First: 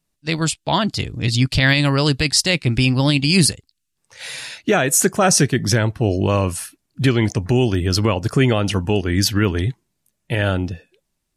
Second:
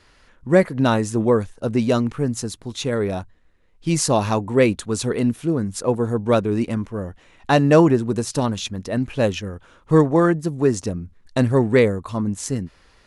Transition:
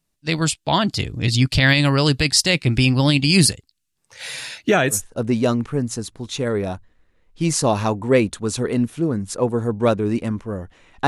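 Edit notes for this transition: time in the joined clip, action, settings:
first
0:04.96: continue with second from 0:01.42, crossfade 0.12 s

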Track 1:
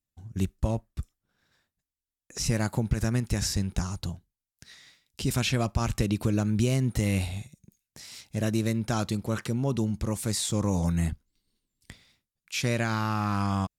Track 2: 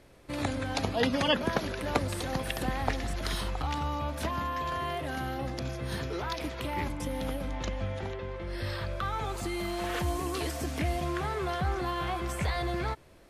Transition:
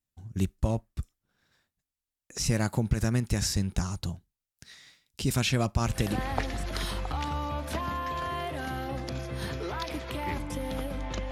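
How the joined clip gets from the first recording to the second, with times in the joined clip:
track 1
0:06.06: continue with track 2 from 0:02.56, crossfade 0.44 s equal-power

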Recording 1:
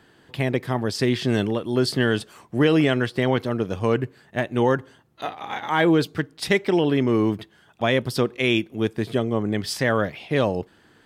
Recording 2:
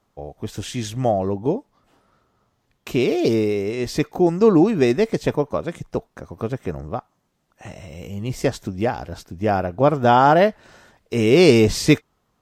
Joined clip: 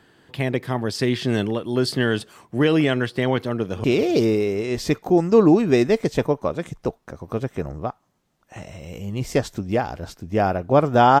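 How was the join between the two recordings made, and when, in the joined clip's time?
recording 1
0:03.55–0:03.84: delay throw 190 ms, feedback 70%, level −13.5 dB
0:03.84: continue with recording 2 from 0:02.93

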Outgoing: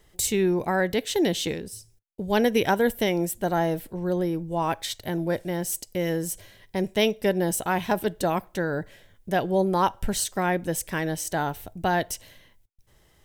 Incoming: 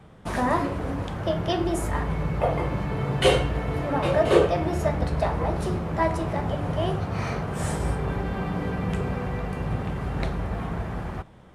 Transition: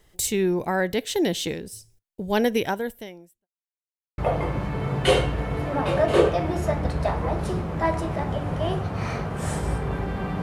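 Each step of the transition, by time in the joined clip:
outgoing
0:02.51–0:03.48: fade out quadratic
0:03.48–0:04.18: silence
0:04.18: continue with incoming from 0:02.35

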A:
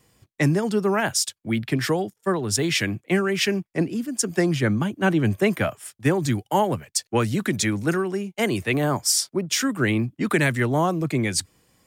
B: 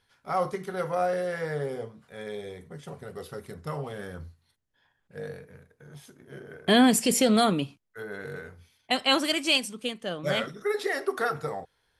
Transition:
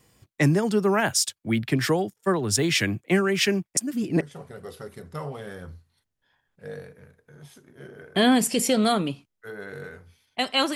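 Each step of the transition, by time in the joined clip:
A
0:03.77–0:04.21: reverse
0:04.21: continue with B from 0:02.73

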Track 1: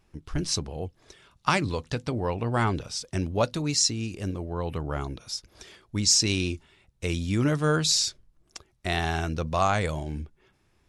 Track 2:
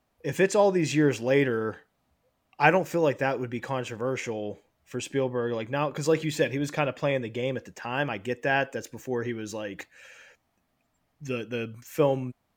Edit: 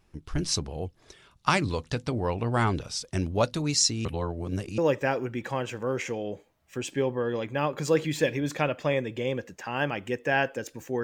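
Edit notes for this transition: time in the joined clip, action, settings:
track 1
0:04.05–0:04.78: reverse
0:04.78: continue with track 2 from 0:02.96

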